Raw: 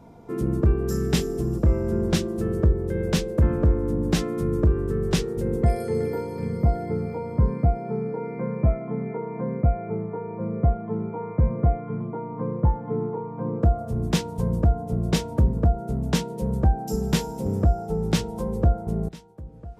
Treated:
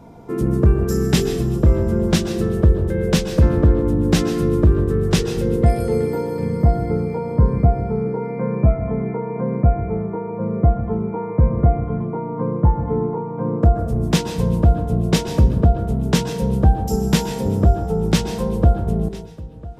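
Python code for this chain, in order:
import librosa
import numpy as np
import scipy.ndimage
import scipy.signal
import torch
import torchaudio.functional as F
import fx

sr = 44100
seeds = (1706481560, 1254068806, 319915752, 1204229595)

p1 = x + fx.echo_banded(x, sr, ms=124, feedback_pct=78, hz=2900.0, wet_db=-21.5, dry=0)
p2 = fx.rev_plate(p1, sr, seeds[0], rt60_s=0.56, hf_ratio=0.8, predelay_ms=115, drr_db=9.5)
y = F.gain(torch.from_numpy(p2), 5.5).numpy()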